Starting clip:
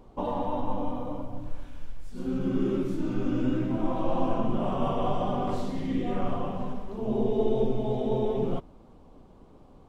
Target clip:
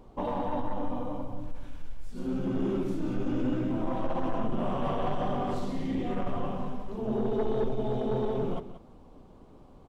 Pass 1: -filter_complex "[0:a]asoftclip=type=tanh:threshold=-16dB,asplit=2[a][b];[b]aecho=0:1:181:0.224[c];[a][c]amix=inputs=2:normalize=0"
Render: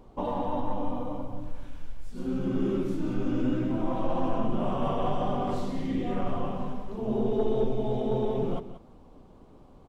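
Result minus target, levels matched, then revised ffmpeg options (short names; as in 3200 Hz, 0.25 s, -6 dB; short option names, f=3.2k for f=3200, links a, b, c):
soft clip: distortion -9 dB
-filter_complex "[0:a]asoftclip=type=tanh:threshold=-22.5dB,asplit=2[a][b];[b]aecho=0:1:181:0.224[c];[a][c]amix=inputs=2:normalize=0"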